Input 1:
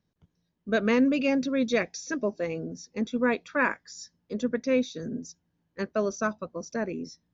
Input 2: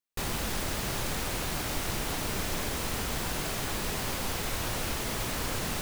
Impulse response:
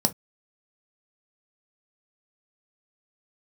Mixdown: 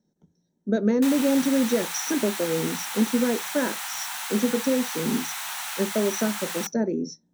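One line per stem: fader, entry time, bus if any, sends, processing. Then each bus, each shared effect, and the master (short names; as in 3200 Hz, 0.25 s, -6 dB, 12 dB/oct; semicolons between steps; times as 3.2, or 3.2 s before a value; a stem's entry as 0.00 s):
-5.0 dB, 0.00 s, send -9.5 dB, fifteen-band EQ 400 Hz +7 dB, 2500 Hz -7 dB, 6300 Hz +7 dB; compressor, threshold -23 dBFS, peak gain reduction 7 dB
+2.0 dB, 0.85 s, send -22.5 dB, steep high-pass 800 Hz 48 dB/oct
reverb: on, pre-delay 3 ms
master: dry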